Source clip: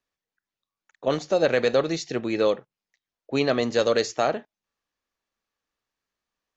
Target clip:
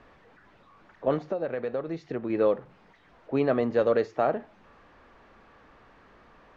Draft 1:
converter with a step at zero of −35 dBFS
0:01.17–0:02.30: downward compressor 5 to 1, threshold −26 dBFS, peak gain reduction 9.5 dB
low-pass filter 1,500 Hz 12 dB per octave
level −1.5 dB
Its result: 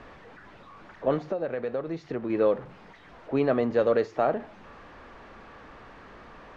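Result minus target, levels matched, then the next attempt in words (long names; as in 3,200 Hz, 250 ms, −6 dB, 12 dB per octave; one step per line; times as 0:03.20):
converter with a step at zero: distortion +8 dB
converter with a step at zero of −43 dBFS
0:01.17–0:02.30: downward compressor 5 to 1, threshold −26 dBFS, peak gain reduction 9.5 dB
low-pass filter 1,500 Hz 12 dB per octave
level −1.5 dB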